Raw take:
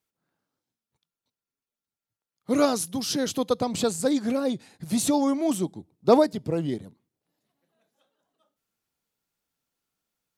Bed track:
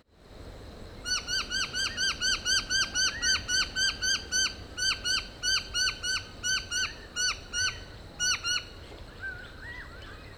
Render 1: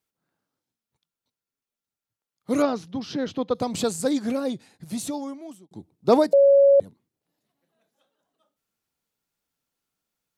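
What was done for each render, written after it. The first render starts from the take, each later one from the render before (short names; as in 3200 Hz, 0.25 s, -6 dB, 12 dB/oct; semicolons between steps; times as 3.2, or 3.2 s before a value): 2.62–3.55 air absorption 240 m; 4.29–5.71 fade out; 6.33–6.8 bleep 557 Hz -11.5 dBFS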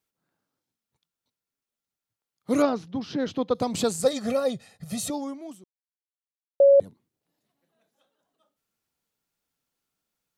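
2.69–3.2 high shelf 4800 Hz -8.5 dB; 4.03–5.1 comb 1.6 ms, depth 87%; 5.64–6.6 mute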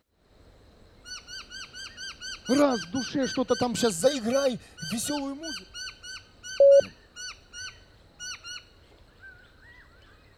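add bed track -10.5 dB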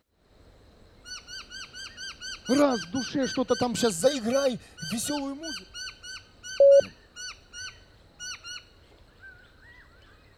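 nothing audible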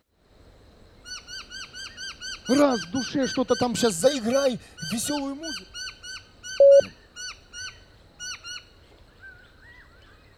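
gain +2.5 dB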